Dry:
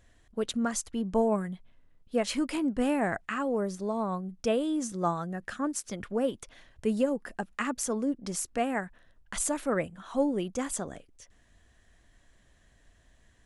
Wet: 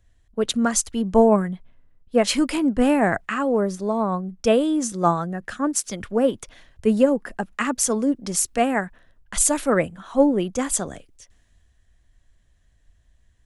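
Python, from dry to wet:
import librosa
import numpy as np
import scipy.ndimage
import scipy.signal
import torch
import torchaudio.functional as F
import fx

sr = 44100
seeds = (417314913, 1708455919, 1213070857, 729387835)

y = fx.band_widen(x, sr, depth_pct=40)
y = F.gain(torch.from_numpy(y), 8.5).numpy()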